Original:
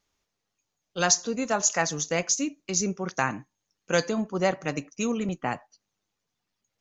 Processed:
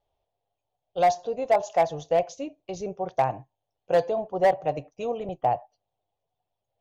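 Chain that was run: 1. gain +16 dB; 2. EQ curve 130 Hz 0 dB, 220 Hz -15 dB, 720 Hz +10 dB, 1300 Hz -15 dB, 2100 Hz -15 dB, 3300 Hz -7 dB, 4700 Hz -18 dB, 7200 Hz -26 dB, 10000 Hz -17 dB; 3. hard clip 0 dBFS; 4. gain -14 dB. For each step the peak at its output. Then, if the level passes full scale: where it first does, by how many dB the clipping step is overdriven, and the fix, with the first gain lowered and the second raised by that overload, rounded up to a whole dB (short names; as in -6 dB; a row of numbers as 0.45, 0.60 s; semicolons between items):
+9.0, +6.5, 0.0, -14.0 dBFS; step 1, 6.5 dB; step 1 +9 dB, step 4 -7 dB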